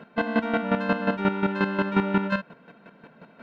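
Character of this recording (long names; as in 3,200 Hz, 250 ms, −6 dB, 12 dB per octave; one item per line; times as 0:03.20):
chopped level 5.6 Hz, depth 65%, duty 20%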